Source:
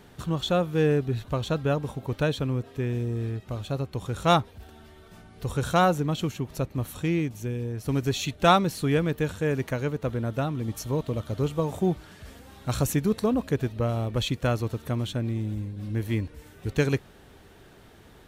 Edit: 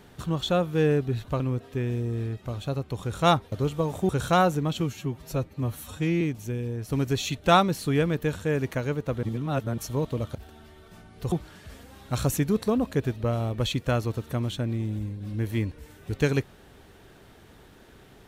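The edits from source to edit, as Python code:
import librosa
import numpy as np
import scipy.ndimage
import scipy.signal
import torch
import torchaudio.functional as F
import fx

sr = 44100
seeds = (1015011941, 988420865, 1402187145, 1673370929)

y = fx.edit(x, sr, fx.cut(start_s=1.4, length_s=1.03),
    fx.swap(start_s=4.55, length_s=0.97, other_s=11.31, other_length_s=0.57),
    fx.stretch_span(start_s=6.23, length_s=0.94, factor=1.5),
    fx.reverse_span(start_s=10.19, length_s=0.55), tone=tone)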